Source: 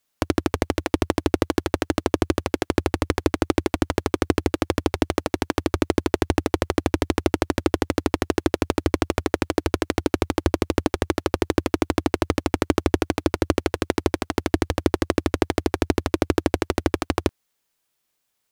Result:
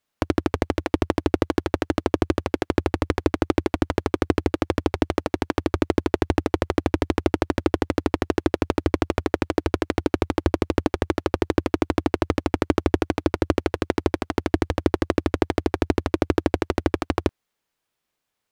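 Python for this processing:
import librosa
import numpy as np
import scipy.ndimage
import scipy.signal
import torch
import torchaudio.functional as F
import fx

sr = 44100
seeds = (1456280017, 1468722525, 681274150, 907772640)

y = fx.high_shelf(x, sr, hz=4600.0, db=-10.0)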